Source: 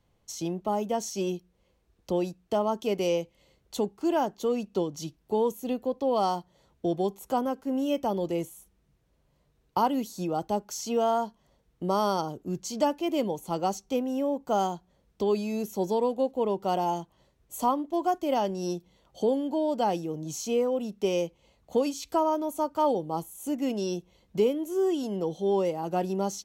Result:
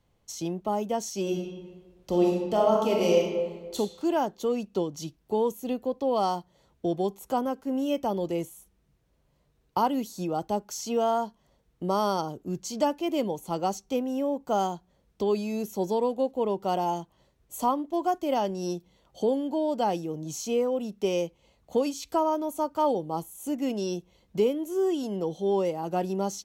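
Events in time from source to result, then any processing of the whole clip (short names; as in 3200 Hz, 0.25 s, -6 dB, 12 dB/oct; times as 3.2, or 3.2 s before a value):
1.22–3.76 reverb throw, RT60 1.4 s, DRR -2 dB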